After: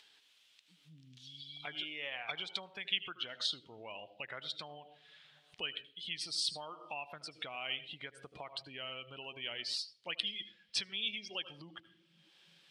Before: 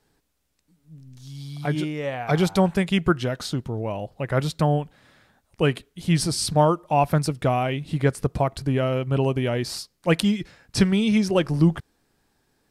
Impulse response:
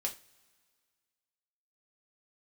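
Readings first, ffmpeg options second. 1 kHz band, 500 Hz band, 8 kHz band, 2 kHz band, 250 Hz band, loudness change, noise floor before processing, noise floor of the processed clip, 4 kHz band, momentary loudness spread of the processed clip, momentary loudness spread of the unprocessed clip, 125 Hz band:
−22.0 dB, −26.5 dB, −15.0 dB, −10.5 dB, −33.5 dB, −16.5 dB, −70 dBFS, −69 dBFS, −3.5 dB, 15 LU, 10 LU, −36.5 dB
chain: -filter_complex "[0:a]asplit=2[link_01][link_02];[1:a]atrim=start_sample=2205,asetrate=24255,aresample=44100,adelay=76[link_03];[link_02][link_03]afir=irnorm=-1:irlink=0,volume=-18dB[link_04];[link_01][link_04]amix=inputs=2:normalize=0,acompressor=threshold=-24dB:ratio=16,afftdn=noise_reduction=16:noise_floor=-42,bandpass=frequency=3200:width_type=q:width=3.4:csg=0,acompressor=mode=upward:threshold=-50dB:ratio=2.5,volume=6.5dB"

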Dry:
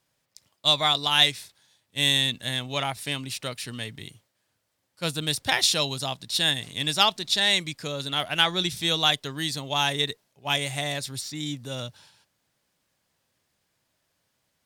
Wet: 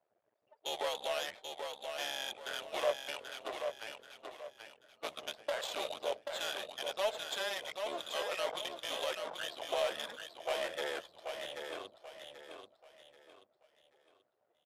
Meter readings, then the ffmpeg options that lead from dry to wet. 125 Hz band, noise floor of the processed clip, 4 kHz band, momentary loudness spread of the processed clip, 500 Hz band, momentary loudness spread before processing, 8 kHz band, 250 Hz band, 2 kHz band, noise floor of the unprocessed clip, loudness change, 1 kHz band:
below −30 dB, −79 dBFS, −17.5 dB, 15 LU, −3.0 dB, 13 LU, −15.0 dB, −20.5 dB, −13.0 dB, −75 dBFS, −14.5 dB, −11.5 dB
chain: -filter_complex "[0:a]aeval=exprs='val(0)+0.5*0.0596*sgn(val(0))':channel_layout=same,agate=range=-9dB:threshold=-27dB:ratio=16:detection=peak,afftdn=noise_reduction=27:noise_floor=-32,equalizer=frequency=12000:width_type=o:width=1.1:gain=-2.5,afreqshift=-220,acrossover=split=3900[link_01][link_02];[link_02]acompressor=threshold=-45dB:ratio=6[link_03];[link_01][link_03]amix=inputs=2:normalize=0,aeval=exprs='max(val(0),0)':channel_layout=same,alimiter=limit=-15dB:level=0:latency=1:release=88,highpass=frequency=600:width_type=q:width=4.3,adynamicsmooth=sensitivity=7.5:basefreq=1400,asplit=2[link_04][link_05];[link_05]aecho=0:1:784|1568|2352|3136:0.501|0.17|0.0579|0.0197[link_06];[link_04][link_06]amix=inputs=2:normalize=0,volume=-8.5dB" -ar 32000 -c:a libmp3lame -b:a 80k

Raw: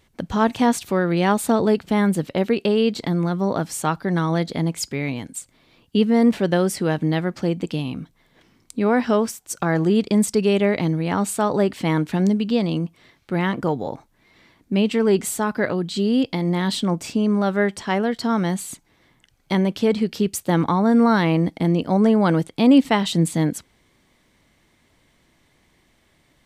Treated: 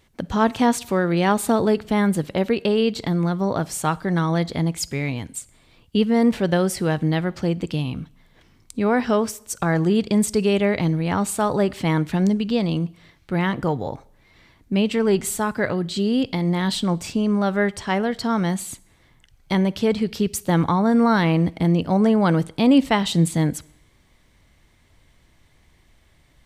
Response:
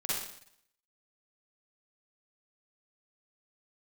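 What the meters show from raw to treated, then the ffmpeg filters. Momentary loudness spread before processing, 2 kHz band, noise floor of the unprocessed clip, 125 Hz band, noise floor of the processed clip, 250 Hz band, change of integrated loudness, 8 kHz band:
9 LU, 0.0 dB, −62 dBFS, +1.0 dB, −58 dBFS, −1.0 dB, −0.5 dB, +0.5 dB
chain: -filter_complex "[0:a]asubboost=boost=3:cutoff=120,asplit=2[link_01][link_02];[1:a]atrim=start_sample=2205[link_03];[link_02][link_03]afir=irnorm=-1:irlink=0,volume=-27dB[link_04];[link_01][link_04]amix=inputs=2:normalize=0"

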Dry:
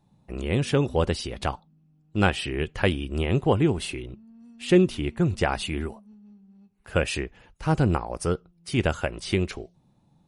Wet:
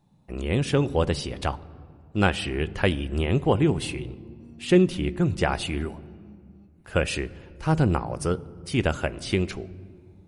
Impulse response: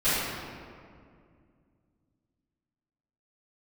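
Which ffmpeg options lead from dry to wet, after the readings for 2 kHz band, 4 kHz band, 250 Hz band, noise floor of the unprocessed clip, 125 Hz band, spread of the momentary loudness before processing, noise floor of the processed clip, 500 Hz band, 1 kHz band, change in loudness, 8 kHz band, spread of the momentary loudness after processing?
0.0 dB, 0.0 dB, +0.5 dB, −64 dBFS, +0.5 dB, 12 LU, −53 dBFS, 0.0 dB, 0.0 dB, +0.5 dB, 0.0 dB, 16 LU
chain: -filter_complex "[0:a]asplit=2[link_01][link_02];[1:a]atrim=start_sample=2205,lowshelf=frequency=310:gain=8.5[link_03];[link_02][link_03]afir=irnorm=-1:irlink=0,volume=-34.5dB[link_04];[link_01][link_04]amix=inputs=2:normalize=0"

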